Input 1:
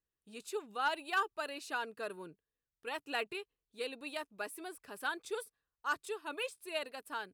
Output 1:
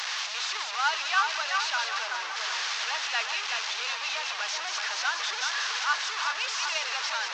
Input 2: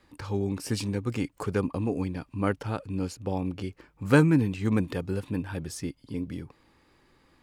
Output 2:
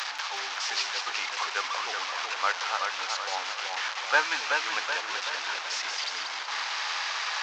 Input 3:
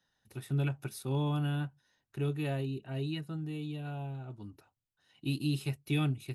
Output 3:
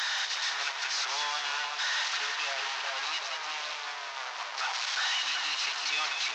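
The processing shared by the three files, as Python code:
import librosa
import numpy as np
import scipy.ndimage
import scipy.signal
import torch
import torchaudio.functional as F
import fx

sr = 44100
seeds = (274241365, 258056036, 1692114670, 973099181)

y = fx.delta_mod(x, sr, bps=32000, step_db=-31.0)
y = scipy.signal.sosfilt(scipy.signal.butter(4, 850.0, 'highpass', fs=sr, output='sos'), y)
y = fx.echo_split(y, sr, split_hz=2000.0, low_ms=378, high_ms=186, feedback_pct=52, wet_db=-4.5)
y = fx.attack_slew(y, sr, db_per_s=300.0)
y = y * 10.0 ** (7.5 / 20.0)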